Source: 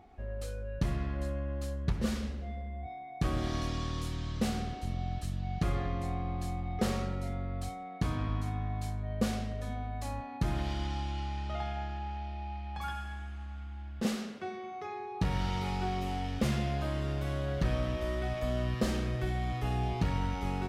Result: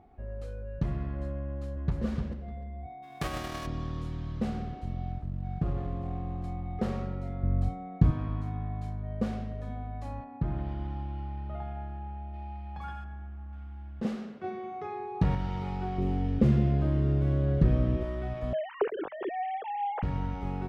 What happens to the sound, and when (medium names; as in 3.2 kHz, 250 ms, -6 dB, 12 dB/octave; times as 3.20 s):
1.46–2.03 s: echo throw 300 ms, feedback 15%, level -4 dB
3.02–3.65 s: formants flattened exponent 0.3
5.12–6.44 s: median filter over 25 samples
7.43–8.11 s: bass shelf 310 Hz +11 dB
10.24–12.34 s: tape spacing loss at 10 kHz 23 dB
13.04–13.53 s: low-pass 1.3 kHz 6 dB/octave
14.44–15.35 s: gain +4.5 dB
15.98–18.03 s: resonant low shelf 550 Hz +6.5 dB, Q 1.5
18.53–20.03 s: formants replaced by sine waves
whole clip: low-pass 1.1 kHz 6 dB/octave; peaking EQ 150 Hz +4.5 dB 0.26 oct